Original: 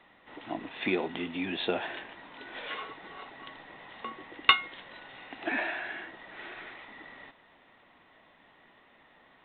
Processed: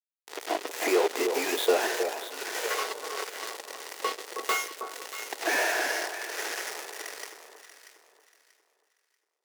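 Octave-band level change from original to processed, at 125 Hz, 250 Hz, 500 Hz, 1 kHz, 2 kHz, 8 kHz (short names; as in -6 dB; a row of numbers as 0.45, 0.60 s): under -15 dB, +0.5 dB, +9.5 dB, +4.0 dB, +3.0 dB, n/a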